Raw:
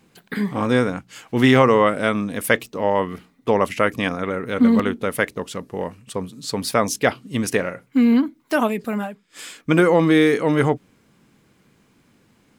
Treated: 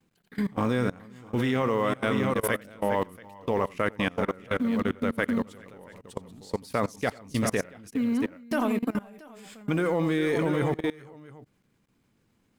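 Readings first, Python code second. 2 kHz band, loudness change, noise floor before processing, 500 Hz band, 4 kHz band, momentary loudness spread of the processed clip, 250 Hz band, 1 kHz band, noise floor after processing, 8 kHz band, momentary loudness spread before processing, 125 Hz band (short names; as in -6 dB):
-9.0 dB, -8.5 dB, -60 dBFS, -8.5 dB, -10.0 dB, 16 LU, -8.5 dB, -8.5 dB, -69 dBFS, -9.5 dB, 15 LU, -6.5 dB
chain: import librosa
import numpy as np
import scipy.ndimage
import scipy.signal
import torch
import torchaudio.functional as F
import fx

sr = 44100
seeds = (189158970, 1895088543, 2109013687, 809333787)

y = fx.law_mismatch(x, sr, coded='A')
y = fx.low_shelf(y, sr, hz=110.0, db=7.5)
y = fx.echo_multitap(y, sr, ms=(89, 401, 410, 679), db=(-14.0, -14.5, -17.5, -9.5))
y = fx.level_steps(y, sr, step_db=22)
y = y * 10.0 ** (-3.0 / 20.0)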